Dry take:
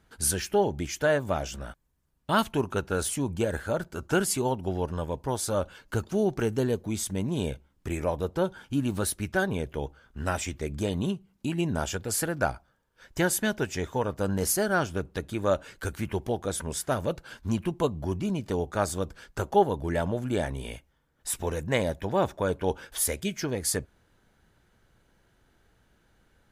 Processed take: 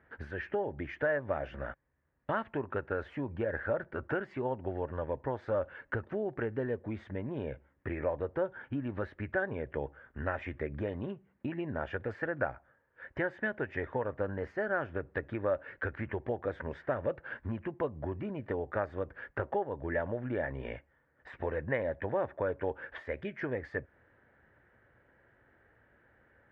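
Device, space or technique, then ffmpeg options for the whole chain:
bass amplifier: -af "acompressor=threshold=0.0251:ratio=4,highpass=75,equalizer=f=180:t=q:w=4:g=-9,equalizer=f=550:t=q:w=4:g=6,equalizer=f=1800:t=q:w=4:g=10,lowpass=f=2200:w=0.5412,lowpass=f=2200:w=1.3066"

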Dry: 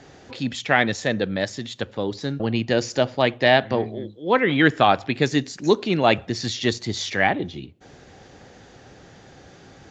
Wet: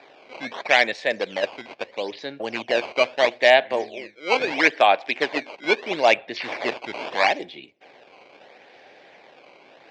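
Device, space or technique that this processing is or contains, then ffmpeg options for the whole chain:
circuit-bent sampling toy: -filter_complex "[0:a]acrusher=samples=14:mix=1:aa=0.000001:lfo=1:lforange=22.4:lforate=0.76,highpass=520,equalizer=f=600:t=q:w=4:g=4,equalizer=f=1300:t=q:w=4:g=-8,equalizer=f=2300:t=q:w=4:g=8,lowpass=f=4600:w=0.5412,lowpass=f=4600:w=1.3066,asettb=1/sr,asplit=3[s0][s1][s2];[s0]atrim=end=4.524[s3];[s1]atrim=start=4.52:end=5.65,asetpts=PTS-STARTPTS,afade=t=in:d=0.004:c=qsin,afade=t=out:st=1.126:d=0.004:c=qsin,highpass=180[s4];[s2]atrim=start=5.646[s5];[s3][s4]acrossfade=d=0.004:c1=hsin:c2=qsin[s6];[s6][s5]acrossfade=d=0.004:c1=qsin:c2=hsin,volume=1.12"

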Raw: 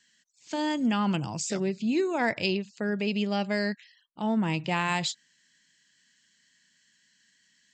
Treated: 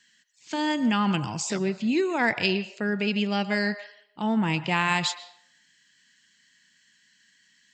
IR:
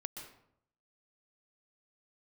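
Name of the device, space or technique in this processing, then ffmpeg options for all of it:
filtered reverb send: -filter_complex "[0:a]asplit=2[s0][s1];[s1]highpass=f=570:w=0.5412,highpass=f=570:w=1.3066,lowpass=4200[s2];[1:a]atrim=start_sample=2205[s3];[s2][s3]afir=irnorm=-1:irlink=0,volume=0.631[s4];[s0][s4]amix=inputs=2:normalize=0,volume=1.26"

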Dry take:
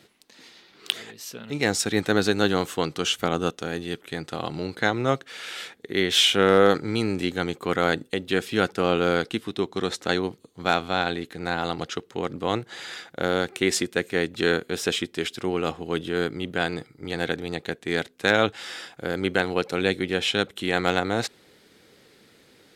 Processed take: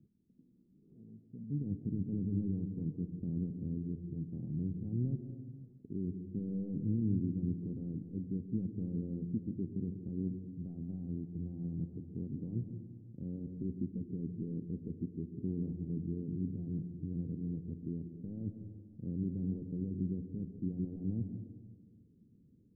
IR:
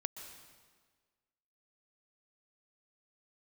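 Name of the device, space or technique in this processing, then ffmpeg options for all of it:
club heard from the street: -filter_complex "[0:a]alimiter=limit=0.15:level=0:latency=1:release=17,lowpass=f=230:w=0.5412,lowpass=f=230:w=1.3066[s0];[1:a]atrim=start_sample=2205[s1];[s0][s1]afir=irnorm=-1:irlink=0,volume=1.12"

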